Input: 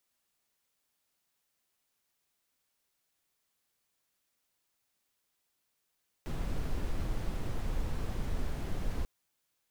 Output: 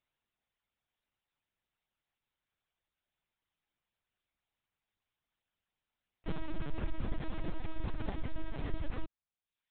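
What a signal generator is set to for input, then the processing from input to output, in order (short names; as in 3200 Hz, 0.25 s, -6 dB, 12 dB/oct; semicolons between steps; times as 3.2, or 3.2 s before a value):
noise brown, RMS -32 dBFS 2.79 s
reverb removal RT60 0.84 s; sample leveller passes 1; LPC vocoder at 8 kHz pitch kept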